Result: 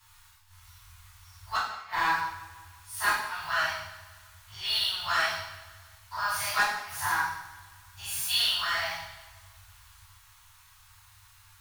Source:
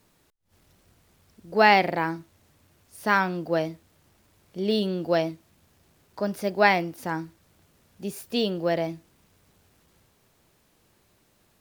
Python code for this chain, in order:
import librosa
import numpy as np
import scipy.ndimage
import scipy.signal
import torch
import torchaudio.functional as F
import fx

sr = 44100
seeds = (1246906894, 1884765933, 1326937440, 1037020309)

p1 = fx.spec_dilate(x, sr, span_ms=120)
p2 = scipy.signal.sosfilt(scipy.signal.ellip(3, 1.0, 40, [100.0, 950.0], 'bandstop', fs=sr, output='sos'), p1)
p3 = fx.gate_flip(p2, sr, shuts_db=-9.0, range_db=-41)
p4 = 10.0 ** (-24.0 / 20.0) * np.tanh(p3 / 10.0 ** (-24.0 / 20.0))
p5 = p4 + fx.echo_feedback(p4, sr, ms=173, feedback_pct=52, wet_db=-18.5, dry=0)
p6 = fx.rev_double_slope(p5, sr, seeds[0], early_s=0.72, late_s=2.3, knee_db=-27, drr_db=-10.0)
y = p6 * librosa.db_to_amplitude(-5.0)